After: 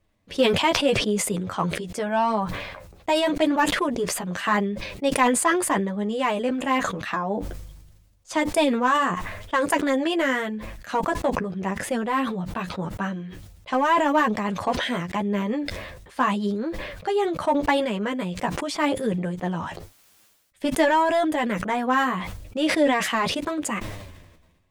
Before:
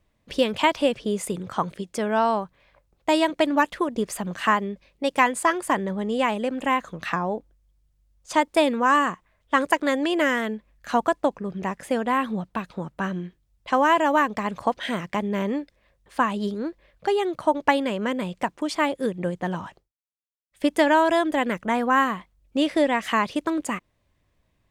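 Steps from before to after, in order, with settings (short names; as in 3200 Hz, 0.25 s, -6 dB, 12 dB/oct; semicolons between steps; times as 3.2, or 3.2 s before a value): in parallel at -6 dB: hard clip -17.5 dBFS, distortion -11 dB; on the sum: flange 0.84 Hz, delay 9 ms, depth 3.5 ms, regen +4%; sustainer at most 45 dB/s; gain -1.5 dB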